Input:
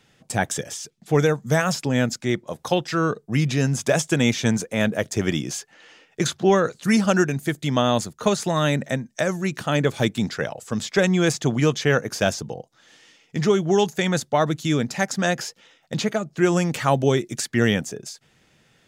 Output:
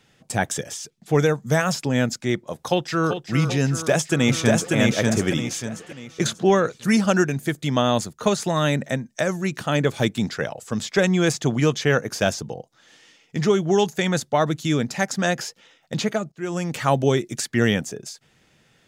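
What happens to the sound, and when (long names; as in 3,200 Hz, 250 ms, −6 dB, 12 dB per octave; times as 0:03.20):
0:02.54–0:03.19: delay throw 390 ms, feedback 65%, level −9 dB
0:03.69–0:04.74: delay throw 590 ms, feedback 35%, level −1.5 dB
0:16.32–0:16.88: fade in, from −19.5 dB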